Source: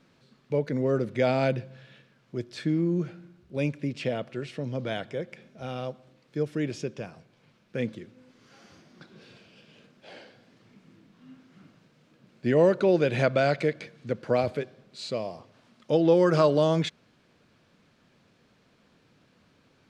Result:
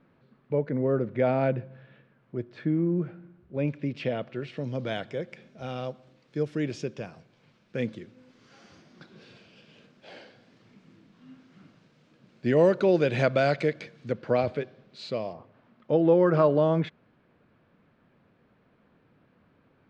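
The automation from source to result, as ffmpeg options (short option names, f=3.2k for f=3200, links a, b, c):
-af "asetnsamples=n=441:p=0,asendcmd='3.68 lowpass f 3700;4.57 lowpass f 7100;14.12 lowpass f 4100;15.33 lowpass f 1900',lowpass=1.8k"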